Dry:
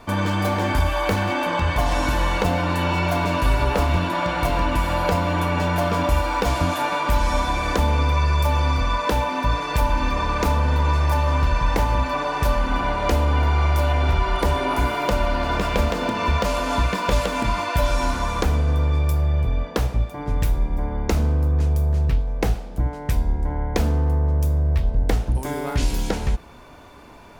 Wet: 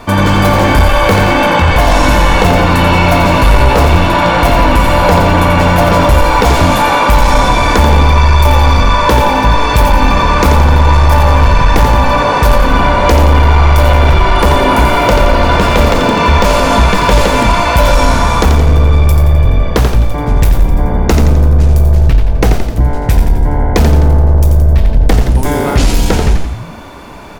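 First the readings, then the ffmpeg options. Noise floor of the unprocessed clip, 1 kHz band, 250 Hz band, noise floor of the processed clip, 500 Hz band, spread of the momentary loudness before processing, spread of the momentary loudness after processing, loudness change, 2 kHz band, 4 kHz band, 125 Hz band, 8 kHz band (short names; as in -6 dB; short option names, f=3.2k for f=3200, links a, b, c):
-34 dBFS, +13.0 dB, +12.5 dB, -15 dBFS, +13.0 dB, 4 LU, 4 LU, +12.5 dB, +13.0 dB, +13.0 dB, +12.0 dB, +13.0 dB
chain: -filter_complex "[0:a]asplit=7[a][b][c][d][e][f][g];[b]adelay=86,afreqshift=-55,volume=-6dB[h];[c]adelay=172,afreqshift=-110,volume=-12dB[i];[d]adelay=258,afreqshift=-165,volume=-18dB[j];[e]adelay=344,afreqshift=-220,volume=-24.1dB[k];[f]adelay=430,afreqshift=-275,volume=-30.1dB[l];[g]adelay=516,afreqshift=-330,volume=-36.1dB[m];[a][h][i][j][k][l][m]amix=inputs=7:normalize=0,aeval=exprs='0.501*sin(PI/2*1.58*val(0)/0.501)':c=same,volume=5dB"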